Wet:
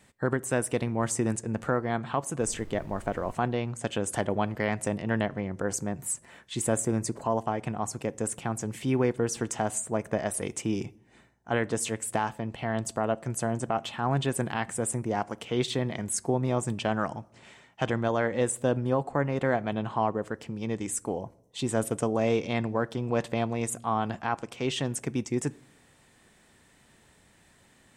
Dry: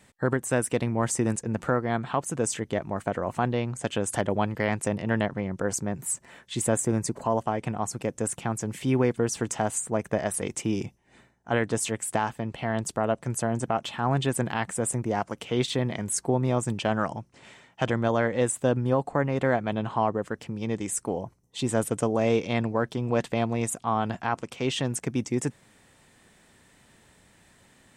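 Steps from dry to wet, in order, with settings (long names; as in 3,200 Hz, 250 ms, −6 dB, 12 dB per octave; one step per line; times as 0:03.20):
0:02.39–0:03.31: background noise brown −42 dBFS
on a send: convolution reverb RT60 0.70 s, pre-delay 3 ms, DRR 18.5 dB
on the sum: level −2 dB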